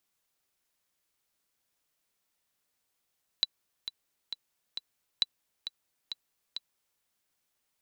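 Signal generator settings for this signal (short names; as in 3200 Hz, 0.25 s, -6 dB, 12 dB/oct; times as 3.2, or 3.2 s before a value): metronome 134 bpm, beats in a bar 4, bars 2, 3960 Hz, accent 11 dB -11.5 dBFS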